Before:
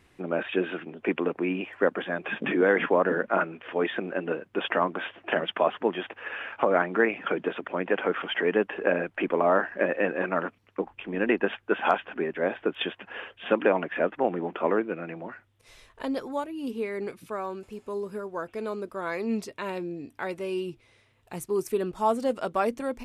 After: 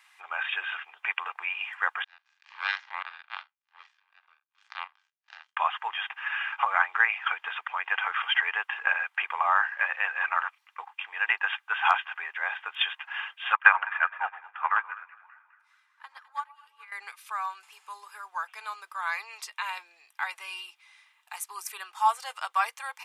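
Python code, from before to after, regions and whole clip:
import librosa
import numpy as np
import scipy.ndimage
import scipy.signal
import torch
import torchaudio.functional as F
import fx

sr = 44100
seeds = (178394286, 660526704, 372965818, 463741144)

y = fx.chain(x, sr, fx.spec_blur(span_ms=115.0),
    fx.power_curve(exponent=3.0), at=(2.04, 5.57))
y = fx.chain(y, sr, fx.peak_eq(hz=1400.0, db=12.5, octaves=1.5),
    fx.echo_split(split_hz=1100.0, low_ms=118, high_ms=206, feedback_pct=52, wet_db=-7.5),
    fx.upward_expand(threshold_db=-30.0, expansion=2.5), at=(13.53, 16.92))
y = scipy.signal.sosfilt(scipy.signal.ellip(4, 1.0, 80, 920.0, 'highpass', fs=sr, output='sos'), y)
y = y + 0.33 * np.pad(y, (int(2.5 * sr / 1000.0), 0))[:len(y)]
y = F.gain(torch.from_numpy(y), 5.0).numpy()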